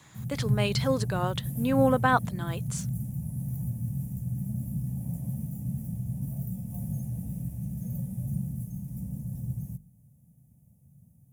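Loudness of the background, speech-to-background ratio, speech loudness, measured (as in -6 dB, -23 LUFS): -33.5 LUFS, 5.5 dB, -28.0 LUFS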